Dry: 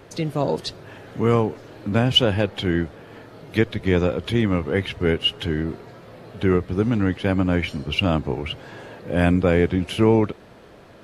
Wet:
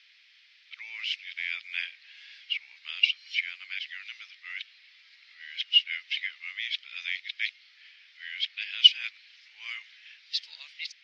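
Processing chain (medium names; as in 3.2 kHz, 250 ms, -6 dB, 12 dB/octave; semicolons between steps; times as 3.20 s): reverse the whole clip; elliptic band-pass 2.1–5.3 kHz, stop band 80 dB; trim +1.5 dB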